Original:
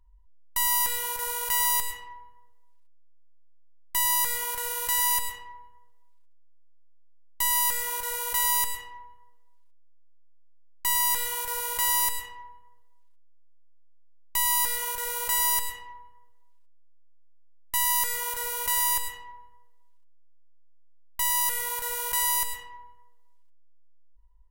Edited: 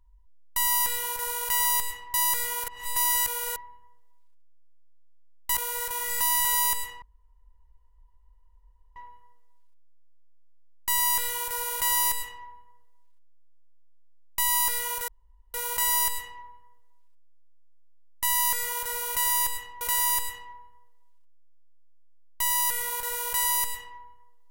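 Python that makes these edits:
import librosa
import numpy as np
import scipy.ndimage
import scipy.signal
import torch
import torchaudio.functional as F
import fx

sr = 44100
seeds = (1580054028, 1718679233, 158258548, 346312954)

y = fx.edit(x, sr, fx.cut(start_s=2.14, length_s=1.91),
    fx.reverse_span(start_s=4.59, length_s=0.88),
    fx.reverse_span(start_s=7.46, length_s=0.9),
    fx.insert_room_tone(at_s=8.93, length_s=1.94),
    fx.insert_room_tone(at_s=15.05, length_s=0.46),
    fx.repeat(start_s=18.6, length_s=0.72, count=2), tone=tone)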